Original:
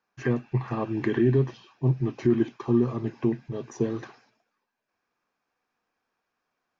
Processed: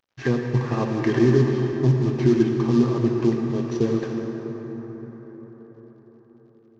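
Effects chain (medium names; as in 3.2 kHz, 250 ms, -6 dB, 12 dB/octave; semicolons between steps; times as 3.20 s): CVSD coder 32 kbps; on a send: reverberation RT60 5.5 s, pre-delay 57 ms, DRR 2.5 dB; on the sum: trim +3.5 dB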